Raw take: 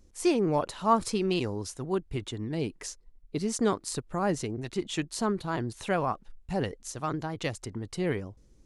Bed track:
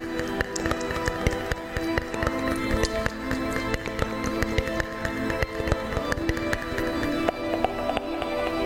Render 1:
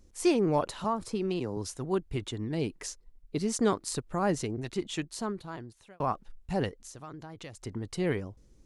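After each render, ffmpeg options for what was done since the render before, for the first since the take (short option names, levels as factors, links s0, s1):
-filter_complex "[0:a]asettb=1/sr,asplit=3[s0][s1][s2];[s0]atrim=end=0.844[s3];[s1]atrim=start=0.84:end=1.57,asetpts=PTS-STARTPTS,afade=t=in:d=0.004:c=qsin,afade=t=out:st=0.726:d=0.004:c=qsin,acrossover=split=120|1300[s4][s5][s6];[s4]acompressor=threshold=0.00355:ratio=4[s7];[s5]acompressor=threshold=0.0398:ratio=4[s8];[s6]acompressor=threshold=0.00631:ratio=4[s9];[s7][s8][s9]amix=inputs=3:normalize=0[s10];[s2]atrim=start=1.566[s11];[s3][s10]acrossfade=d=0.004:c1=hsin:c2=qsin[s12];[s12][s11]acrossfade=d=0.004:c1=qsin:c2=hsin,asettb=1/sr,asplit=3[s13][s14][s15];[s13]atrim=end=6.694[s16];[s14]atrim=start=6.69:end=7.65,asetpts=PTS-STARTPTS,afade=t=in:d=0.004:c=qsin,afade=t=out:st=0.956:d=0.004:c=qsin,acompressor=threshold=0.00501:ratio=2.5:attack=3.2:release=140:knee=1:detection=peak[s17];[s15]atrim=start=7.646[s18];[s16][s17]acrossfade=d=0.004:c1=hsin:c2=qsin[s19];[s19][s18]acrossfade=d=0.004:c1=qsin:c2=hsin,asplit=2[s20][s21];[s20]atrim=end=6,asetpts=PTS-STARTPTS,afade=t=out:st=4.61:d=1.39[s22];[s21]atrim=start=6,asetpts=PTS-STARTPTS,afade=t=in:d=0.004:c=hsin[s23];[s22][s23]concat=n=2:v=0:a=1"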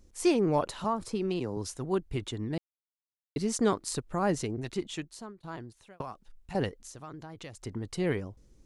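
-filter_complex "[0:a]asettb=1/sr,asplit=3[s0][s1][s2];[s0]atrim=end=6.014[s3];[s1]atrim=start=6.01:end=6.55,asetpts=PTS-STARTPTS,afade=t=in:d=0.004:c=qsin,afade=t=out:st=0.536:d=0.004:c=qsin,acrossover=split=660|3100[s4][s5][s6];[s4]acompressor=threshold=0.00501:ratio=4[s7];[s5]acompressor=threshold=0.00708:ratio=4[s8];[s6]acompressor=threshold=0.00112:ratio=4[s9];[s7][s8][s9]amix=inputs=3:normalize=0[s10];[s2]atrim=start=6.546[s11];[s3][s10]acrossfade=d=0.004:c1=hsin:c2=qsin[s12];[s12][s11]acrossfade=d=0.004:c1=qsin:c2=hsin,asplit=4[s13][s14][s15][s16];[s13]atrim=end=2.58,asetpts=PTS-STARTPTS,afade=t=out:st=2.576:d=0.004:c=hsin[s17];[s14]atrim=start=2.58:end=3.36,asetpts=PTS-STARTPTS,volume=0[s18];[s15]atrim=start=3.36:end=5.43,asetpts=PTS-STARTPTS,afade=t=in:d=0.004:c=hsin,afade=t=out:st=1.38:d=0.69:silence=0.0891251[s19];[s16]atrim=start=5.43,asetpts=PTS-STARTPTS,afade=t=in:d=0.004:c=hsin:silence=0.0891251[s20];[s17][s18][s19][s20]concat=n=4:v=0:a=1"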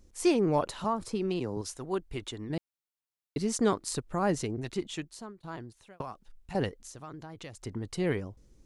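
-filter_complex "[0:a]asettb=1/sr,asplit=3[s0][s1][s2];[s0]atrim=end=1.614[s3];[s1]atrim=start=1.61:end=2.5,asetpts=PTS-STARTPTS,afade=t=in:d=0.004:c=qsin,afade=t=out:st=0.886:d=0.004:c=qsin,equalizer=f=120:t=o:w=2.7:g=-7[s4];[s2]atrim=start=2.496[s5];[s3][s4]acrossfade=d=0.004:c1=hsin:c2=qsin[s6];[s6][s5]acrossfade=d=0.004:c1=qsin:c2=hsin"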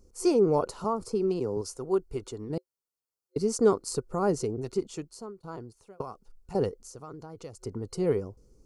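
-af "superequalizer=7b=2.24:11b=0.282:12b=0.355:13b=0.282"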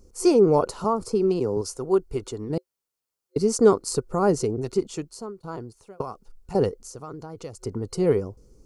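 -af "volume=1.88"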